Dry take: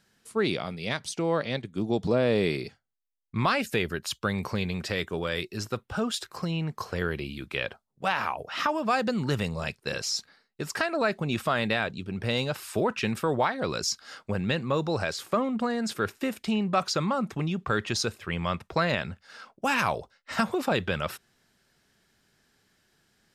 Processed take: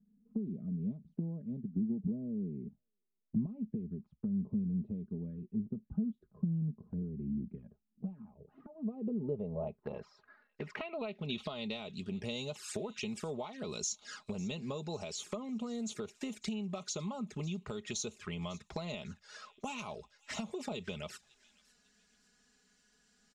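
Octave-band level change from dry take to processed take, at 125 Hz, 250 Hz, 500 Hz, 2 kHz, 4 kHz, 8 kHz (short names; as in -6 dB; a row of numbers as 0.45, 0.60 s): -8.0, -6.5, -14.0, -19.5, -13.0, -6.5 dB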